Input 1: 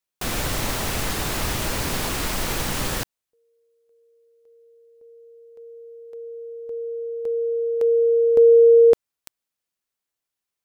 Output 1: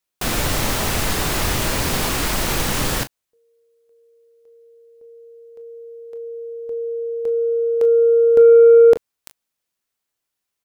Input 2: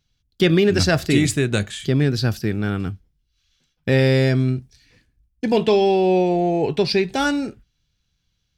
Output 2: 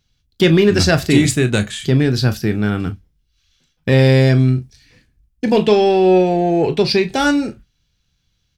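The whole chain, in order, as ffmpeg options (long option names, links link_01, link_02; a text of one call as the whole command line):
ffmpeg -i in.wav -af "acontrast=33,aecho=1:1:24|38:0.224|0.211,volume=-1dB" out.wav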